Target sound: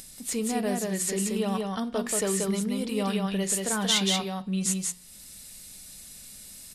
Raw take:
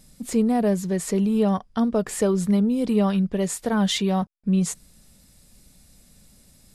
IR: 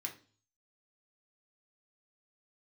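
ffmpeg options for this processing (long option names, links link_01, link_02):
-filter_complex "[0:a]tiltshelf=frequency=1200:gain=-5.5,bandreject=frequency=177.9:width_type=h:width=4,bandreject=frequency=355.8:width_type=h:width=4,bandreject=frequency=533.7:width_type=h:width=4,bandreject=frequency=711.6:width_type=h:width=4,bandreject=frequency=889.5:width_type=h:width=4,bandreject=frequency=1067.4:width_type=h:width=4,bandreject=frequency=1245.3:width_type=h:width=4,bandreject=frequency=1423.2:width_type=h:width=4,bandreject=frequency=1601.1:width_type=h:width=4,bandreject=frequency=1779:width_type=h:width=4,bandreject=frequency=1956.9:width_type=h:width=4,bandreject=frequency=2134.8:width_type=h:width=4,bandreject=frequency=2312.7:width_type=h:width=4,bandreject=frequency=2490.6:width_type=h:width=4,bandreject=frequency=2668.5:width_type=h:width=4,bandreject=frequency=2846.4:width_type=h:width=4,bandreject=frequency=3024.3:width_type=h:width=4,bandreject=frequency=3202.2:width_type=h:width=4,bandreject=frequency=3380.1:width_type=h:width=4,bandreject=frequency=3558:width_type=h:width=4,bandreject=frequency=3735.9:width_type=h:width=4,bandreject=frequency=3913.8:width_type=h:width=4,bandreject=frequency=4091.7:width_type=h:width=4,bandreject=frequency=4269.6:width_type=h:width=4,bandreject=frequency=4447.5:width_type=h:width=4,bandreject=frequency=4625.4:width_type=h:width=4,bandreject=frequency=4803.3:width_type=h:width=4,bandreject=frequency=4981.2:width_type=h:width=4,bandreject=frequency=5159.1:width_type=h:width=4,bandreject=frequency=5337:width_type=h:width=4,bandreject=frequency=5514.9:width_type=h:width=4,acompressor=mode=upward:threshold=-36dB:ratio=2.5,aecho=1:1:182:0.708,asplit=2[link_01][link_02];[1:a]atrim=start_sample=2205,asetrate=48510,aresample=44100[link_03];[link_02][link_03]afir=irnorm=-1:irlink=0,volume=-7.5dB[link_04];[link_01][link_04]amix=inputs=2:normalize=0,volume=-4dB"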